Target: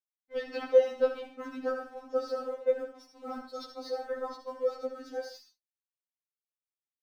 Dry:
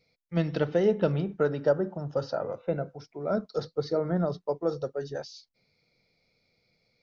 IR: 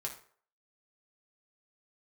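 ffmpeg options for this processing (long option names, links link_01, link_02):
-filter_complex "[0:a]bandreject=frequency=140.3:width_type=h:width=4,bandreject=frequency=280.6:width_type=h:width=4,bandreject=frequency=420.9:width_type=h:width=4,bandreject=frequency=561.2:width_type=h:width=4,bandreject=frequency=701.5:width_type=h:width=4,bandreject=frequency=841.8:width_type=h:width=4,bandreject=frequency=982.1:width_type=h:width=4,bandreject=frequency=1122.4:width_type=h:width=4,bandreject=frequency=1262.7:width_type=h:width=4,bandreject=frequency=1403:width_type=h:width=4,bandreject=frequency=1543.3:width_type=h:width=4,bandreject=frequency=1683.6:width_type=h:width=4,bandreject=frequency=1823.9:width_type=h:width=4,bandreject=frequency=1964.2:width_type=h:width=4,bandreject=frequency=2104.5:width_type=h:width=4,bandreject=frequency=2244.8:width_type=h:width=4,bandreject=frequency=2385.1:width_type=h:width=4,bandreject=frequency=2525.4:width_type=h:width=4,bandreject=frequency=2665.7:width_type=h:width=4,bandreject=frequency=2806:width_type=h:width=4,bandreject=frequency=2946.3:width_type=h:width=4,bandreject=frequency=3086.6:width_type=h:width=4,bandreject=frequency=3226.9:width_type=h:width=4,bandreject=frequency=3367.2:width_type=h:width=4,bandreject=frequency=3507.5:width_type=h:width=4,bandreject=frequency=3647.8:width_type=h:width=4,bandreject=frequency=3788.1:width_type=h:width=4,bandreject=frequency=3928.4:width_type=h:width=4,bandreject=frequency=4068.7:width_type=h:width=4,bandreject=frequency=4209:width_type=h:width=4,bandreject=frequency=4349.3:width_type=h:width=4,bandreject=frequency=4489.6:width_type=h:width=4,aeval=exprs='sgn(val(0))*max(abs(val(0))-0.00178,0)':channel_layout=same,asplit=2[link_01][link_02];[1:a]atrim=start_sample=2205,atrim=end_sample=3969,adelay=73[link_03];[link_02][link_03]afir=irnorm=-1:irlink=0,volume=-5.5dB[link_04];[link_01][link_04]amix=inputs=2:normalize=0,afftfilt=real='re*3.46*eq(mod(b,12),0)':imag='im*3.46*eq(mod(b,12),0)':win_size=2048:overlap=0.75"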